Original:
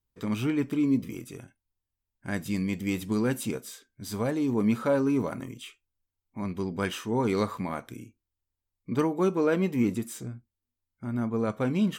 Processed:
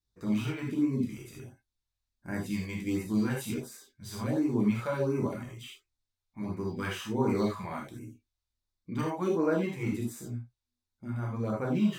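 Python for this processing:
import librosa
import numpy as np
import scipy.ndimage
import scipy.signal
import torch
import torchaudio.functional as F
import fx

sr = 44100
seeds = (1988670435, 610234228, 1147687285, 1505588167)

y = fx.rev_gated(x, sr, seeds[0], gate_ms=110, shape='flat', drr_db=-2.5)
y = fx.filter_lfo_notch(y, sr, shape='sine', hz=1.4, low_hz=240.0, high_hz=3500.0, q=1.0)
y = np.interp(np.arange(len(y)), np.arange(len(y))[::2], y[::2])
y = y * librosa.db_to_amplitude(-6.0)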